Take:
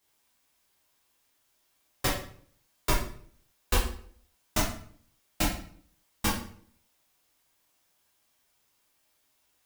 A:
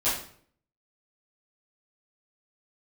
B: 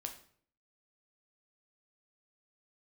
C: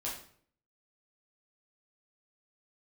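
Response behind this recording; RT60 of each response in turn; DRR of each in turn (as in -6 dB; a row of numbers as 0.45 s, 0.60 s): C; 0.55 s, 0.55 s, 0.55 s; -13.5 dB, 4.0 dB, -6.0 dB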